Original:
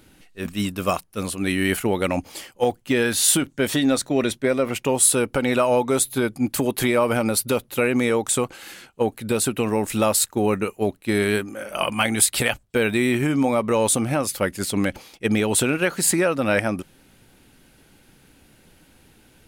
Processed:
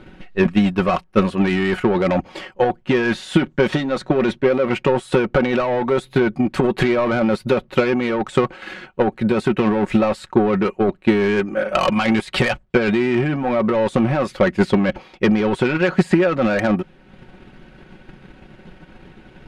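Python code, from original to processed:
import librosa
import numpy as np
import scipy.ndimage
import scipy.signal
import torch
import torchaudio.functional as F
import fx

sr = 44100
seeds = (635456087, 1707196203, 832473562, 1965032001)

p1 = fx.over_compress(x, sr, threshold_db=-24.0, ratio=-0.5)
p2 = x + (p1 * 10.0 ** (2.0 / 20.0))
p3 = scipy.signal.sosfilt(scipy.signal.butter(2, 2300.0, 'lowpass', fs=sr, output='sos'), p2)
p4 = 10.0 ** (-14.0 / 20.0) * np.tanh(p3 / 10.0 ** (-14.0 / 20.0))
p5 = fx.transient(p4, sr, attack_db=8, sustain_db=-5)
y = p5 + 0.53 * np.pad(p5, (int(5.4 * sr / 1000.0), 0))[:len(p5)]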